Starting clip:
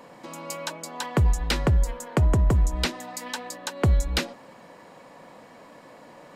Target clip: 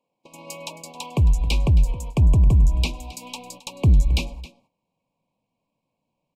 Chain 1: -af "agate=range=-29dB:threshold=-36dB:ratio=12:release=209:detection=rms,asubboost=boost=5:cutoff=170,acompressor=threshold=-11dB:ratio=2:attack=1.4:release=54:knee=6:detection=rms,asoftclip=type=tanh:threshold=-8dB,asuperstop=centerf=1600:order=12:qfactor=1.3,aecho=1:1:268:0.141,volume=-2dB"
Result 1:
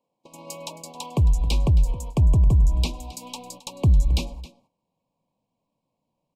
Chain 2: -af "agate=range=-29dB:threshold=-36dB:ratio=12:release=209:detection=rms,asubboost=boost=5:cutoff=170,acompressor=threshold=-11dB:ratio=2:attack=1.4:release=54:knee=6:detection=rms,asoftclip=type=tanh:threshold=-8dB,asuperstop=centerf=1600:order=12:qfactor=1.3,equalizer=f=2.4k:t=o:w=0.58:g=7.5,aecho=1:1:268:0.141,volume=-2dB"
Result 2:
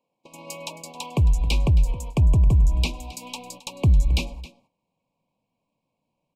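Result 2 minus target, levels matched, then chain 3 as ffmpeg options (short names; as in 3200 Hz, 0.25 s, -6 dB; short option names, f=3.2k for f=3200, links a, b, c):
compressor: peak gain reduction +4.5 dB
-af "agate=range=-29dB:threshold=-36dB:ratio=12:release=209:detection=rms,asubboost=boost=5:cutoff=170,asoftclip=type=tanh:threshold=-8dB,asuperstop=centerf=1600:order=12:qfactor=1.3,equalizer=f=2.4k:t=o:w=0.58:g=7.5,aecho=1:1:268:0.141,volume=-2dB"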